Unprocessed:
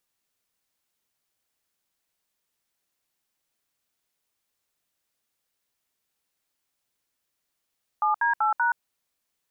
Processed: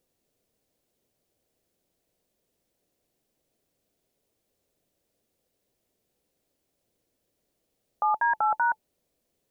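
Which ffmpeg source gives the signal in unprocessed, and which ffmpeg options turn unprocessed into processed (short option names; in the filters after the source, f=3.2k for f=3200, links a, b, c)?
-f lavfi -i "aevalsrc='0.075*clip(min(mod(t,0.192),0.124-mod(t,0.192))/0.002,0,1)*(eq(floor(t/0.192),0)*(sin(2*PI*852*mod(t,0.192))+sin(2*PI*1209*mod(t,0.192)))+eq(floor(t/0.192),1)*(sin(2*PI*941*mod(t,0.192))+sin(2*PI*1633*mod(t,0.192)))+eq(floor(t/0.192),2)*(sin(2*PI*852*mod(t,0.192))+sin(2*PI*1336*mod(t,0.192)))+eq(floor(t/0.192),3)*(sin(2*PI*941*mod(t,0.192))+sin(2*PI*1477*mod(t,0.192))))':d=0.768:s=44100"
-af "lowshelf=f=790:t=q:w=1.5:g=12,bandreject=f=870:w=24"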